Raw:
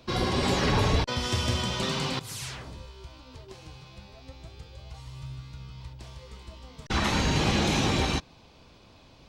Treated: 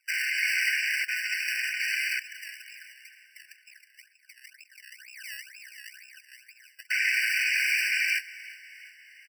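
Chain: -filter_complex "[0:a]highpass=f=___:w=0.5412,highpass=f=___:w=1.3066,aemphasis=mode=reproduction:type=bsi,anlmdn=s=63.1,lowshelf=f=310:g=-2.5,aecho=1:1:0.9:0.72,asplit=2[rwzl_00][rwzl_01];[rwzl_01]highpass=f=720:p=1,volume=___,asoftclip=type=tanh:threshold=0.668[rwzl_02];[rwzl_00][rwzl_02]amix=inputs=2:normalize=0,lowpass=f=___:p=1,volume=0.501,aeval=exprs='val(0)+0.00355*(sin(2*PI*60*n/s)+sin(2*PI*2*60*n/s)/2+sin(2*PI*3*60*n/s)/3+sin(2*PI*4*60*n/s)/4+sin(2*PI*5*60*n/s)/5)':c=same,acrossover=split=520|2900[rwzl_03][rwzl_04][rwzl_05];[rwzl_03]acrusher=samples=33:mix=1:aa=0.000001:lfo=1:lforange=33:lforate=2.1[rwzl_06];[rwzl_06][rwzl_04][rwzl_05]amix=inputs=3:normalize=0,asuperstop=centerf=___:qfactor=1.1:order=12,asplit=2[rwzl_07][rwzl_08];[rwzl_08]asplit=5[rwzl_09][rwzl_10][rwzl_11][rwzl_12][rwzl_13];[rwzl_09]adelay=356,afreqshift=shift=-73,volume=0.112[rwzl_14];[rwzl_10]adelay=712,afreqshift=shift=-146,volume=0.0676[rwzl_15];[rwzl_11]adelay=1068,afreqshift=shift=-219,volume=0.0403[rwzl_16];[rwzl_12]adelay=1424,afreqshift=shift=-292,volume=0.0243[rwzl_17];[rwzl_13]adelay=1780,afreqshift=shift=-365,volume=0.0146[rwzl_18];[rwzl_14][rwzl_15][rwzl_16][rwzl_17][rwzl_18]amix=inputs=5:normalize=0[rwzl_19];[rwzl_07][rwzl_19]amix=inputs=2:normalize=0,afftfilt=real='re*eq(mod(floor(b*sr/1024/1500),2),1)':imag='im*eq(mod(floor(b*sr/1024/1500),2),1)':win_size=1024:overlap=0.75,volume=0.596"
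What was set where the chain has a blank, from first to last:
57, 57, 50.1, 1900, 900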